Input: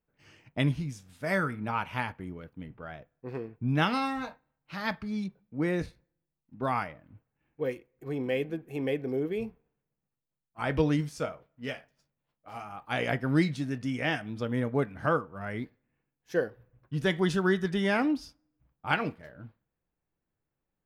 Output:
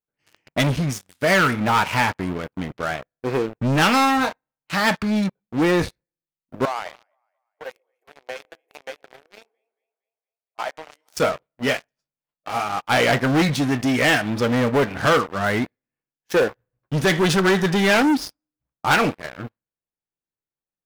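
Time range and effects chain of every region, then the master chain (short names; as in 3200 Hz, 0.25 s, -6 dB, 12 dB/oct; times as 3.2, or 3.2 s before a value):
6.65–11.17 compressor 16:1, threshold -33 dBFS + ladder high-pass 560 Hz, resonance 50% + split-band echo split 590 Hz, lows 0.135 s, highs 0.231 s, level -12.5 dB
whole clip: sample leveller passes 5; low shelf 220 Hz -8 dB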